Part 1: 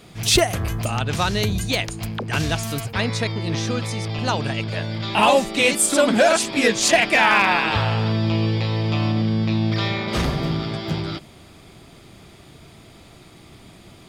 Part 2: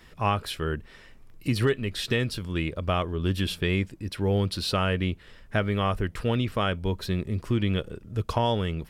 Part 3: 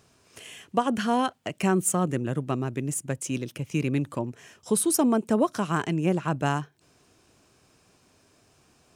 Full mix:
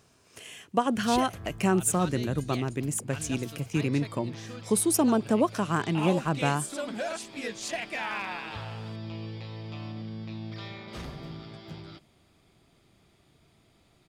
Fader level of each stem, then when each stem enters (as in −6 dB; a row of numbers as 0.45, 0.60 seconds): −17.5 dB, muted, −1.0 dB; 0.80 s, muted, 0.00 s